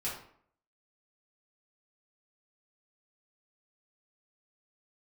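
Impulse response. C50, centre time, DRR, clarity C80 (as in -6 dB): 4.5 dB, 38 ms, -8.5 dB, 8.5 dB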